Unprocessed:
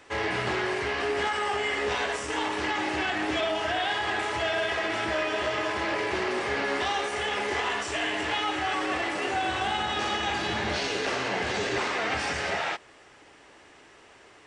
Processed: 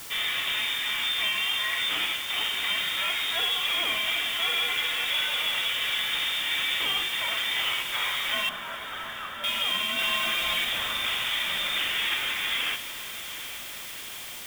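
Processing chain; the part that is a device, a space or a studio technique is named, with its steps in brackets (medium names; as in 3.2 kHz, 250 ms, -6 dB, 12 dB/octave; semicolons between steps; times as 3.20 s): scrambled radio voice (band-pass 390–3000 Hz; frequency inversion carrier 4 kHz; white noise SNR 12 dB); 8.49–9.44 s: steep low-pass 1.8 kHz 96 dB/octave; 9.98–10.65 s: comb 5.8 ms, depth 77%; echo that smears into a reverb 829 ms, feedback 64%, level -13 dB; trim +1.5 dB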